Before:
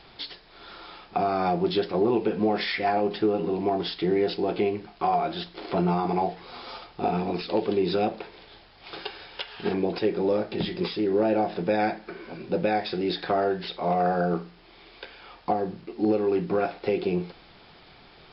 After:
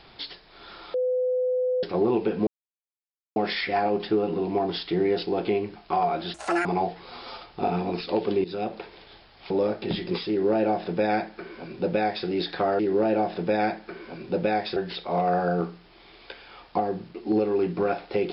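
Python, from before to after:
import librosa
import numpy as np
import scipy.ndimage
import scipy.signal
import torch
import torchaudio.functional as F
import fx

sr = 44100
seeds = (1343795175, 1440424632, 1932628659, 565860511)

y = fx.edit(x, sr, fx.bleep(start_s=0.94, length_s=0.89, hz=505.0, db=-21.5),
    fx.insert_silence(at_s=2.47, length_s=0.89),
    fx.speed_span(start_s=5.45, length_s=0.61, speed=1.95),
    fx.fade_in_from(start_s=7.85, length_s=0.38, floor_db=-14.0),
    fx.cut(start_s=8.91, length_s=1.29),
    fx.duplicate(start_s=10.99, length_s=1.97, to_s=13.49), tone=tone)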